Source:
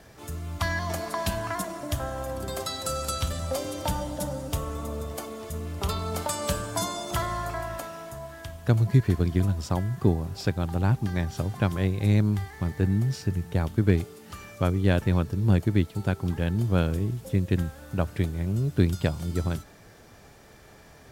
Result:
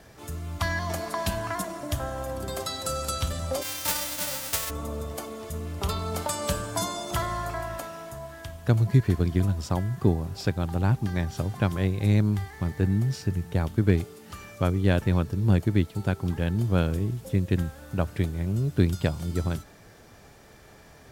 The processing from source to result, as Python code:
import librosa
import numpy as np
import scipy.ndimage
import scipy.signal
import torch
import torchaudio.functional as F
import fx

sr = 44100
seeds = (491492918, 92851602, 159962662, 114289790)

y = fx.envelope_flatten(x, sr, power=0.1, at=(3.61, 4.69), fade=0.02)